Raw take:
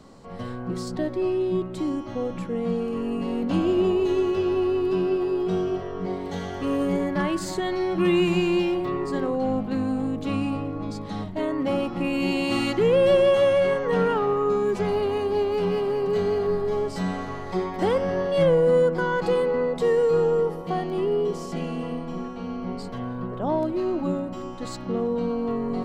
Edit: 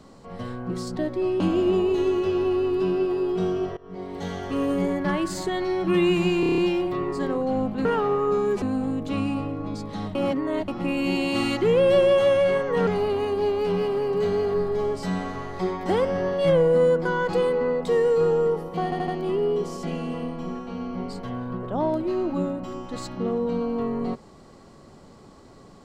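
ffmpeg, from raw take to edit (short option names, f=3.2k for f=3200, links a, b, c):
-filter_complex "[0:a]asplit=17[a][b][c][d][e][f][g][h][i][j][k][l][m][n][o][p][q];[a]atrim=end=1.402[r];[b]atrim=start=3.508:end=5.88,asetpts=PTS-STARTPTS,afade=t=out:st=2.368:d=0.004:c=hsin:silence=0.0841395[s];[c]atrim=start=5.88:end=8.542,asetpts=PTS-STARTPTS,afade=t=in:d=0.51:silence=0.0841395[t];[d]atrim=start=8.508:end=8.542[u];[e]atrim=start=8.508:end=8.542[v];[f]atrim=start=8.508:end=8.542[w];[g]atrim=start=8.508:end=8.542[x];[h]atrim=start=8.508:end=8.542[y];[i]atrim=start=8.508:end=9.782[z];[j]atrim=start=14.028:end=14.802[aa];[k]atrim=start=9.778:end=11.312[ab];[l]atrim=start=11.308:end=11.842,asetpts=PTS-STARTPTS,areverse[ac];[m]atrim=start=11.838:end=14.032[ad];[n]atrim=start=14.798:end=20.852[ae];[o]atrim=start=20.768:end=20.852[af];[p]atrim=start=20.768:end=20.852[ag];[q]atrim=start=20.768[ah];[s][t]concat=n=2:v=0:a=1[ai];[r][ai]acrossfade=d=0.004:c1=hsin:c2=hsin[aj];[aj][u]acrossfade=d=0.004:c1=hsin:c2=hsin[ak];[ak][v]acrossfade=d=0.004:c1=hsin:c2=hsin[al];[al][w]acrossfade=d=0.004:c1=hsin:c2=hsin[am];[am][x]acrossfade=d=0.004:c1=hsin:c2=hsin[an];[an][y]acrossfade=d=0.004:c1=hsin:c2=hsin[ao];[ao][z]acrossfade=d=0.004:c1=hsin:c2=hsin[ap];[ap][aa]acrossfade=d=0.004:c1=hsin:c2=hsin[aq];[aq][ab]acrossfade=d=0.004:c1=hsin:c2=hsin[ar];[ar][ac]acrossfade=d=0.004:c1=hsin:c2=hsin[as];[as][ad]acrossfade=d=0.004:c1=hsin:c2=hsin[at];[at][ae]acrossfade=d=0.004:c1=hsin:c2=hsin[au];[au][af]acrossfade=d=0.004:c1=hsin:c2=hsin[av];[av][ag]acrossfade=d=0.004:c1=hsin:c2=hsin[aw];[aw][ah]acrossfade=d=0.004:c1=hsin:c2=hsin"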